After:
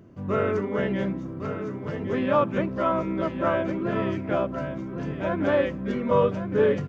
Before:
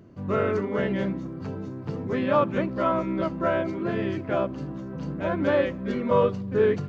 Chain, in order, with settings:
parametric band 4,300 Hz −7.5 dB 0.21 octaves
on a send: single-tap delay 1,111 ms −9 dB

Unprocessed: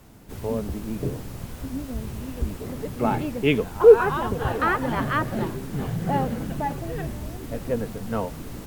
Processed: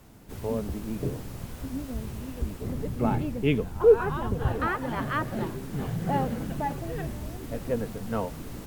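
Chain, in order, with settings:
0:02.62–0:04.67: low-shelf EQ 240 Hz +10 dB
speech leveller within 4 dB 2 s
level −6.5 dB

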